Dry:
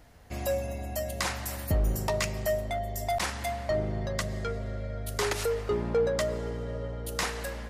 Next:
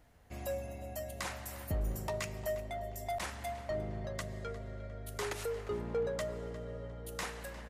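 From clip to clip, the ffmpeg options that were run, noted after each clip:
ffmpeg -i in.wav -filter_complex "[0:a]equalizer=frequency=4900:width=1.9:gain=-3.5,asplit=2[link_01][link_02];[link_02]adelay=354,lowpass=frequency=3900:poles=1,volume=-14.5dB,asplit=2[link_03][link_04];[link_04]adelay=354,lowpass=frequency=3900:poles=1,volume=0.38,asplit=2[link_05][link_06];[link_06]adelay=354,lowpass=frequency=3900:poles=1,volume=0.38,asplit=2[link_07][link_08];[link_08]adelay=354,lowpass=frequency=3900:poles=1,volume=0.38[link_09];[link_01][link_03][link_05][link_07][link_09]amix=inputs=5:normalize=0,volume=-8.5dB" out.wav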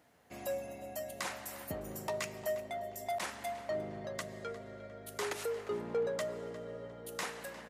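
ffmpeg -i in.wav -af "highpass=190,volume=1dB" out.wav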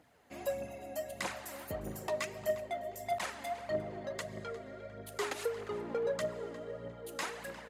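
ffmpeg -i in.wav -af "highshelf=frequency=9700:gain=-6,bandreject=frequency=5600:width=22,aphaser=in_gain=1:out_gain=1:delay=3.9:decay=0.48:speed=1.6:type=triangular" out.wav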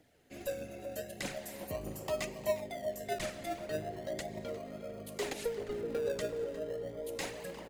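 ffmpeg -i in.wav -filter_complex "[0:a]acrossover=split=710|1600[link_01][link_02][link_03];[link_01]aecho=1:1:380|760|1140|1520|1900|2280|2660|3040:0.562|0.332|0.196|0.115|0.0681|0.0402|0.0237|0.014[link_04];[link_02]acrusher=samples=33:mix=1:aa=0.000001:lfo=1:lforange=19.8:lforate=0.36[link_05];[link_04][link_05][link_03]amix=inputs=3:normalize=0" out.wav

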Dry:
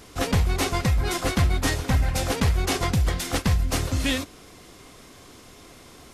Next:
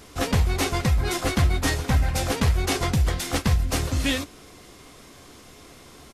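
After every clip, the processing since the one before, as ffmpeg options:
ffmpeg -i in.wav -filter_complex "[0:a]asplit=2[link_01][link_02];[link_02]adelay=14,volume=-12dB[link_03];[link_01][link_03]amix=inputs=2:normalize=0" out.wav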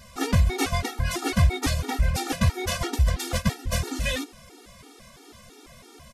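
ffmpeg -i in.wav -af "afftfilt=real='re*gt(sin(2*PI*3*pts/sr)*(1-2*mod(floor(b*sr/1024/240),2)),0)':imag='im*gt(sin(2*PI*3*pts/sr)*(1-2*mod(floor(b*sr/1024/240),2)),0)':win_size=1024:overlap=0.75,volume=1.5dB" out.wav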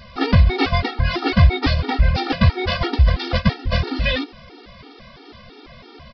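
ffmpeg -i in.wav -af "aresample=11025,aresample=44100,volume=7dB" out.wav

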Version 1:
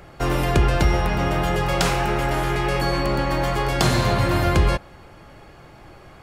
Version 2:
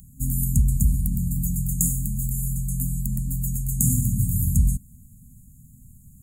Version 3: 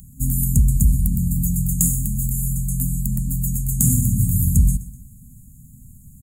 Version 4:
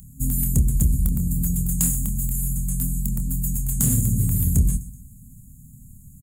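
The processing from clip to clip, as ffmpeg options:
ffmpeg -i in.wav -af "aemphasis=mode=production:type=50fm,afftfilt=real='re*(1-between(b*sr/4096,260,6600))':imag='im*(1-between(b*sr/4096,260,6600))':win_size=4096:overlap=0.75" out.wav
ffmpeg -i in.wav -af "acontrast=36,aecho=1:1:126|252|378:0.141|0.0565|0.0226,volume=-1dB" out.wav
ffmpeg -i in.wav -filter_complex "[0:a]asoftclip=type=tanh:threshold=-9dB,asplit=2[link_01][link_02];[link_02]adelay=27,volume=-9dB[link_03];[link_01][link_03]amix=inputs=2:normalize=0,volume=-1.5dB" out.wav

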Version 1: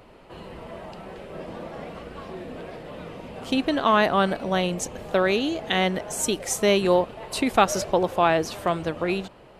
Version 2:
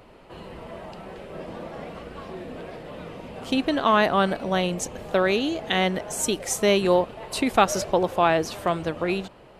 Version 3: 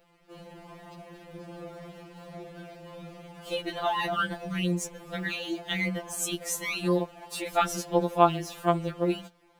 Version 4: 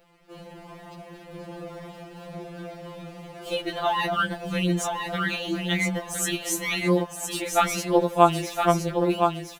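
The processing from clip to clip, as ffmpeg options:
ffmpeg -i in.wav -af anull out.wav
ffmpeg -i in.wav -af "aeval=exprs='sgn(val(0))*max(abs(val(0))-0.00299,0)':channel_layout=same,highshelf=frequency=12000:gain=10,afftfilt=real='re*2.83*eq(mod(b,8),0)':imag='im*2.83*eq(mod(b,8),0)':win_size=2048:overlap=0.75,volume=-3.5dB" out.wav
ffmpeg -i in.wav -af "aecho=1:1:1014|2028|3042:0.531|0.0956|0.0172,volume=3.5dB" out.wav

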